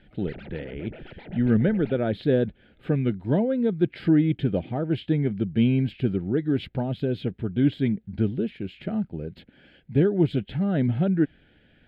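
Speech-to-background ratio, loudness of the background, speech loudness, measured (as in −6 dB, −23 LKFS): 19.0 dB, −44.0 LKFS, −25.0 LKFS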